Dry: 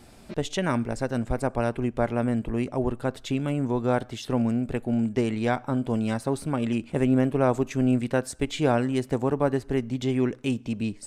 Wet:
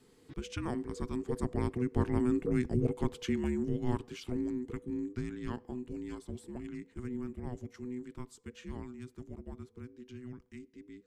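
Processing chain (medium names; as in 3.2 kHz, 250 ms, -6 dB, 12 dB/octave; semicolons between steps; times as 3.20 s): Doppler pass-by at 2.60 s, 5 m/s, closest 4.5 m; frequency shift -500 Hz; trim -3 dB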